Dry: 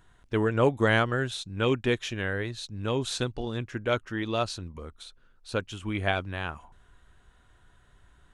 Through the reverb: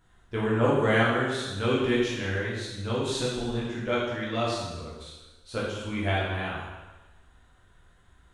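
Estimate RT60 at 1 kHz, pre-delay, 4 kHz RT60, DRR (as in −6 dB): 1.2 s, 6 ms, 1.1 s, −7.0 dB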